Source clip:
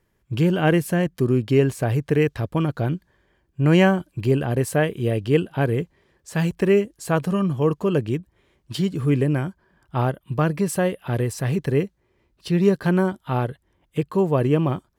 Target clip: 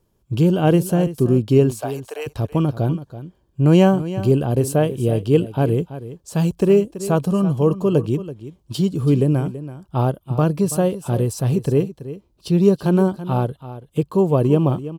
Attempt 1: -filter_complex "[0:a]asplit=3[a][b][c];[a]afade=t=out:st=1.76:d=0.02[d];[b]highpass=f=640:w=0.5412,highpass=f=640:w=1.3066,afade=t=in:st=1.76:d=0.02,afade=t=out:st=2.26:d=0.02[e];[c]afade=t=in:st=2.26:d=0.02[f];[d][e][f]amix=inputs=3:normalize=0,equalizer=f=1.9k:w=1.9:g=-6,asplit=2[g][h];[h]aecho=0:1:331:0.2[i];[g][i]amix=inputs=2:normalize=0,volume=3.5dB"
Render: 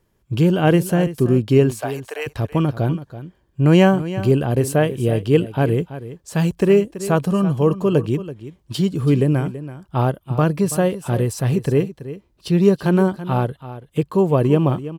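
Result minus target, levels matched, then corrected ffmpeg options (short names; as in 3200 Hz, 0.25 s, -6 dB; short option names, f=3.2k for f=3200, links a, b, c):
2000 Hz band +6.0 dB
-filter_complex "[0:a]asplit=3[a][b][c];[a]afade=t=out:st=1.76:d=0.02[d];[b]highpass=f=640:w=0.5412,highpass=f=640:w=1.3066,afade=t=in:st=1.76:d=0.02,afade=t=out:st=2.26:d=0.02[e];[c]afade=t=in:st=2.26:d=0.02[f];[d][e][f]amix=inputs=3:normalize=0,equalizer=f=1.9k:w=1.9:g=-16.5,asplit=2[g][h];[h]aecho=0:1:331:0.2[i];[g][i]amix=inputs=2:normalize=0,volume=3.5dB"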